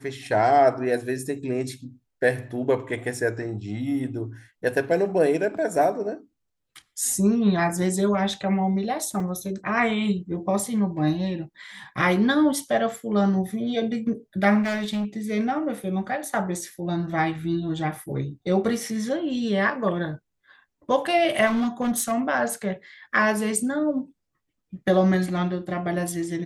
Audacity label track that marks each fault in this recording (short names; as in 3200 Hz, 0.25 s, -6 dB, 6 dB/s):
9.200000	9.200000	gap 2.5 ms
14.620000	15.250000	clipped -23 dBFS
21.460000	22.130000	clipped -19.5 dBFS